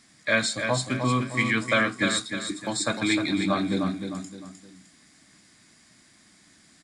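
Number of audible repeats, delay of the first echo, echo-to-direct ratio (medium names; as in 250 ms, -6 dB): 3, 306 ms, -6.5 dB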